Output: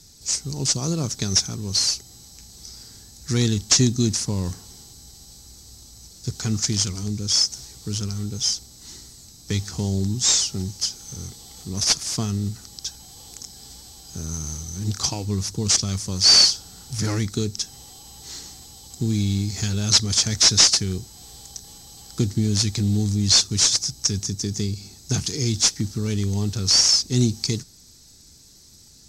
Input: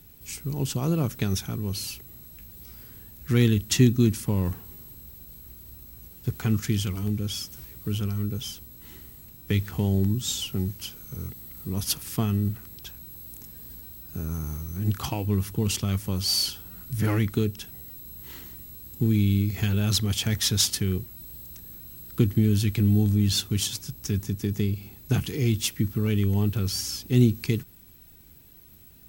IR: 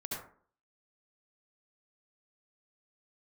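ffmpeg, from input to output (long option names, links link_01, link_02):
-af "aexciter=amount=10:drive=8.1:freq=4400,asoftclip=type=tanh:threshold=-5dB,lowpass=frequency=5900:width=0.5412,lowpass=frequency=5900:width=1.3066"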